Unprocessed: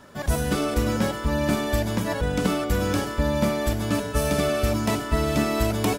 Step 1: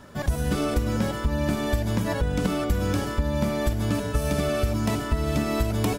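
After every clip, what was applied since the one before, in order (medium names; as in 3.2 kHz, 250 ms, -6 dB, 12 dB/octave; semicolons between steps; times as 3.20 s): bass shelf 160 Hz +8 dB; compression, threshold -20 dBFS, peak gain reduction 9.5 dB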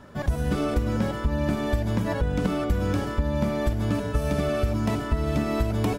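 treble shelf 3.8 kHz -8.5 dB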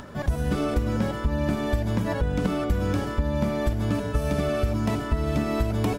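upward compressor, threshold -35 dBFS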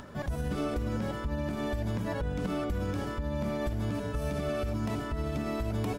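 peak limiter -18.5 dBFS, peak gain reduction 7.5 dB; trim -5 dB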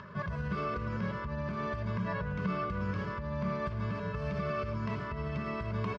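cabinet simulation 120–4200 Hz, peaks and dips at 180 Hz +8 dB, 310 Hz -9 dB, 520 Hz -10 dB, 760 Hz -9 dB, 1.2 kHz +7 dB, 3.6 kHz -7 dB; comb 1.9 ms, depth 64%; delay 113 ms -16 dB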